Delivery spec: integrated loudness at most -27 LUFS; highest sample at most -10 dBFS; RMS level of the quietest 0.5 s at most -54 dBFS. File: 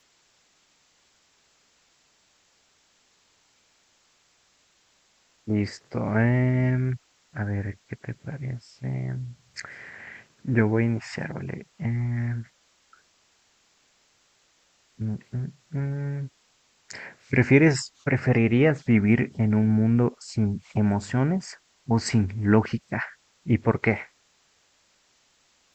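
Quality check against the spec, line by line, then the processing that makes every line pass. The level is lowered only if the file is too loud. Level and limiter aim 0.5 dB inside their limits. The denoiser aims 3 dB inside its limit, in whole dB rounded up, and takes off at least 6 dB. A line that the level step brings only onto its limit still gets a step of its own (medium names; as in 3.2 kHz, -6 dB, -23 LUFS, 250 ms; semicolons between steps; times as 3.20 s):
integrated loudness -25.0 LUFS: fail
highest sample -5.0 dBFS: fail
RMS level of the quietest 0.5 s -65 dBFS: pass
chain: trim -2.5 dB; peak limiter -10.5 dBFS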